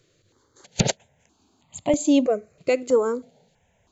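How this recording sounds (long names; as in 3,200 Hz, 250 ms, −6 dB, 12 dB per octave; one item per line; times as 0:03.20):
notches that jump at a steady rate 3.1 Hz 230–1,600 Hz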